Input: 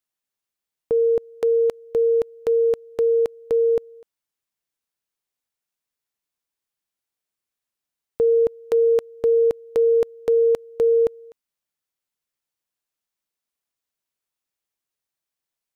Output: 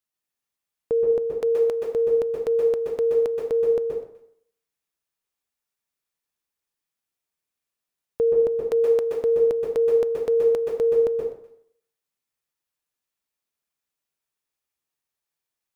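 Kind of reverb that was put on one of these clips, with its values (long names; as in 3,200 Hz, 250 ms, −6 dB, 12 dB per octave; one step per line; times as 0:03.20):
dense smooth reverb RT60 0.62 s, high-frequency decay 0.75×, pre-delay 115 ms, DRR −0.5 dB
level −2.5 dB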